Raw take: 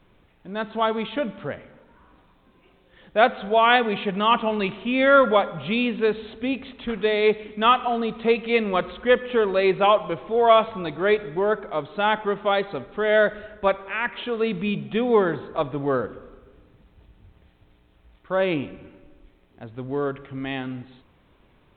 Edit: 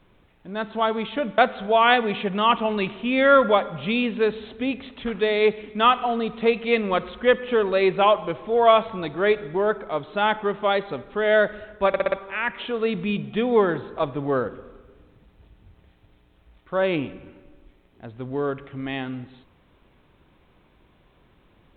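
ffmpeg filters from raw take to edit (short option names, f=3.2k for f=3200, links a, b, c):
-filter_complex "[0:a]asplit=6[a][b][c][d][e][f];[a]atrim=end=1.382[g];[b]atrim=start=3.198:end=13.762[h];[c]atrim=start=13.698:end=13.762[i];[d]atrim=start=13.698:end=13.762[j];[e]atrim=start=13.698:end=13.762[k];[f]atrim=start=13.698[l];[g][h]acrossfade=d=0.004:c1=hsin:c2=hsin[m];[m][i]acrossfade=d=0.004:c1=hsin:c2=hsin[n];[n][j]acrossfade=d=0.004:c1=hsin:c2=hsin[o];[o][k]acrossfade=d=0.004:c1=hsin:c2=hsin[p];[p][l]acrossfade=d=0.004:c1=hsin:c2=hsin"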